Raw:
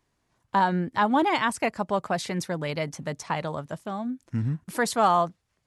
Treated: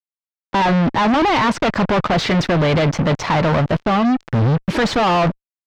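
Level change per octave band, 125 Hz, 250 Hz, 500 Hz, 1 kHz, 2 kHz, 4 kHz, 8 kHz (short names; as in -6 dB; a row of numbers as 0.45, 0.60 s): +14.0, +12.0, +10.0, +7.0, +9.0, +12.0, +2.5 dB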